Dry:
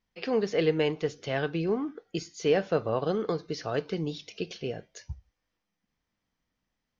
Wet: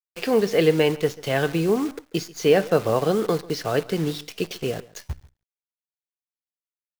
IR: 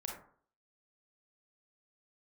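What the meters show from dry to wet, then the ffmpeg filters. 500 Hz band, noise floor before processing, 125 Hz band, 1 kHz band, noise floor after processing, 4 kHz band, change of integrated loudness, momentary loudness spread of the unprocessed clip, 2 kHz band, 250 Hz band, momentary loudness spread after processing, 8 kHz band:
+7.0 dB, -84 dBFS, +7.0 dB, +7.0 dB, under -85 dBFS, +7.5 dB, +7.0 dB, 12 LU, +7.0 dB, +7.0 dB, 12 LU, n/a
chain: -filter_complex "[0:a]acrusher=bits=8:dc=4:mix=0:aa=0.000001,asplit=2[a][b];[b]adelay=139.9,volume=-21dB,highshelf=f=4k:g=-3.15[c];[a][c]amix=inputs=2:normalize=0,volume=7dB"

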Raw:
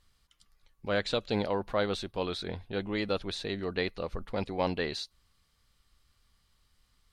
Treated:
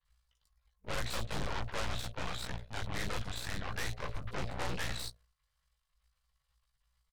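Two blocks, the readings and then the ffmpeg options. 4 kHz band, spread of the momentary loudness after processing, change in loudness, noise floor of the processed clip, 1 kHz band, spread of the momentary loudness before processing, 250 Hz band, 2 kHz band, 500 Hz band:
-4.5 dB, 4 LU, -6.5 dB, -82 dBFS, -4.5 dB, 7 LU, -11.0 dB, -3.0 dB, -13.0 dB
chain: -filter_complex "[0:a]aeval=exprs='if(lt(val(0),0),0.251*val(0),val(0))':c=same,bandreject=f=53.9:t=h:w=4,bandreject=f=107.8:t=h:w=4,bandreject=f=161.7:t=h:w=4,bandreject=f=215.6:t=h:w=4,bandreject=f=269.5:t=h:w=4,bandreject=f=323.4:t=h:w=4,bandreject=f=377.3:t=h:w=4,bandreject=f=431.2:t=h:w=4,bandreject=f=485.1:t=h:w=4,bandreject=f=539:t=h:w=4,bandreject=f=592.9:t=h:w=4,bandreject=f=646.8:t=h:w=4,bandreject=f=700.7:t=h:w=4,bandreject=f=754.6:t=h:w=4,flanger=delay=15.5:depth=4.2:speed=0.45,afreqshift=-60,afftfilt=real='re*(1-between(b*sr/4096,190,460))':imag='im*(1-between(b*sr/4096,190,460))':win_size=4096:overlap=0.75,asoftclip=type=tanh:threshold=-32dB,adynamicequalizer=threshold=0.001:dfrequency=1600:dqfactor=1.3:tfrequency=1600:tqfactor=1.3:attack=5:release=100:ratio=0.375:range=2.5:mode=boostabove:tftype=bell,acrossover=split=3900[a][b];[b]adelay=40[c];[a][c]amix=inputs=2:normalize=0,aeval=exprs='0.0422*(cos(1*acos(clip(val(0)/0.0422,-1,1)))-cos(1*PI/2))+0.00473*(cos(3*acos(clip(val(0)/0.0422,-1,1)))-cos(3*PI/2))+0.015*(cos(8*acos(clip(val(0)/0.0422,-1,1)))-cos(8*PI/2))':c=same"

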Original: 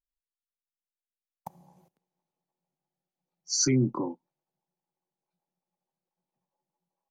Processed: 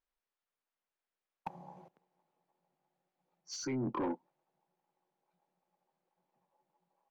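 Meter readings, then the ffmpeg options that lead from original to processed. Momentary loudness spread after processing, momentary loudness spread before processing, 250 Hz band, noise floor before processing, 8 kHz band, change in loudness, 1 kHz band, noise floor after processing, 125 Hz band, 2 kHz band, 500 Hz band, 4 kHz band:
18 LU, 12 LU, -9.0 dB, under -85 dBFS, -18.5 dB, -12.5 dB, 0.0 dB, under -85 dBFS, -14.5 dB, -7.0 dB, -7.0 dB, -14.5 dB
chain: -filter_complex "[0:a]lowpass=f=3.6k:p=1,areverse,acompressor=threshold=-33dB:ratio=16,areverse,asplit=2[a][b];[b]highpass=f=720:p=1,volume=15dB,asoftclip=type=tanh:threshold=-24.5dB[c];[a][c]amix=inputs=2:normalize=0,lowpass=f=1.2k:p=1,volume=-6dB,asoftclip=type=tanh:threshold=-32.5dB,volume=3.5dB"

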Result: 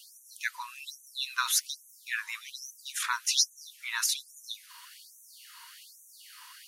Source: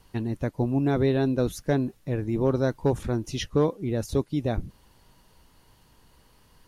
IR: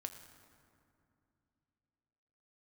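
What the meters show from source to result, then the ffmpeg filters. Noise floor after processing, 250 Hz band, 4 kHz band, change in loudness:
-57 dBFS, under -40 dB, +10.0 dB, -5.0 dB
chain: -af "apsyclip=19.5dB,afftfilt=real='re*gte(b*sr/1024,880*pow(5900/880,0.5+0.5*sin(2*PI*1.2*pts/sr)))':imag='im*gte(b*sr/1024,880*pow(5900/880,0.5+0.5*sin(2*PI*1.2*pts/sr)))':win_size=1024:overlap=0.75,volume=-5dB"

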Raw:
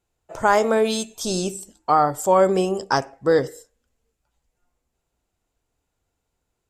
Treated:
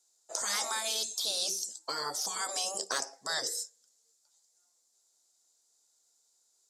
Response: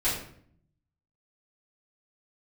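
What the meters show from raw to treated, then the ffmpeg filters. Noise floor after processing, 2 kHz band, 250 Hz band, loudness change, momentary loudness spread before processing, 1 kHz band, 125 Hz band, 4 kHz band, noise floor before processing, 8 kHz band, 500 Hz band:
-73 dBFS, -9.5 dB, -28.5 dB, -12.0 dB, 8 LU, -18.0 dB, -30.5 dB, +1.0 dB, -78 dBFS, +1.5 dB, -23.5 dB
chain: -af "aexciter=amount=8.7:drive=9.5:freq=4.2k,afftfilt=real='re*lt(hypot(re,im),0.316)':imag='im*lt(hypot(re,im),0.316)':win_size=1024:overlap=0.75,highpass=460,lowpass=6k,volume=-6dB"

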